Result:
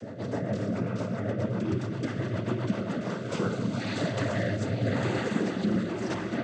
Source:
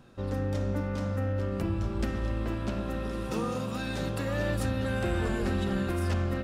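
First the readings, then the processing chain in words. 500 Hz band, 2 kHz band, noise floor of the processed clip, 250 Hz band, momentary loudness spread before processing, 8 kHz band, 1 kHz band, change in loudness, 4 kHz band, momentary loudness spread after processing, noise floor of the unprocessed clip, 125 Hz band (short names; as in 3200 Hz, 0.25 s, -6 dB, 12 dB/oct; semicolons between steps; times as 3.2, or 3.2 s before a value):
+1.5 dB, +1.0 dB, -36 dBFS, +2.5 dB, 4 LU, -0.5 dB, +0.5 dB, +1.0 dB, +1.5 dB, 4 LU, -34 dBFS, -0.5 dB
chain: reverse echo 0.311 s -9.5 dB; noise vocoder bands 16; rotary speaker horn 7.5 Hz, later 0.9 Hz, at 2.69; gain +4 dB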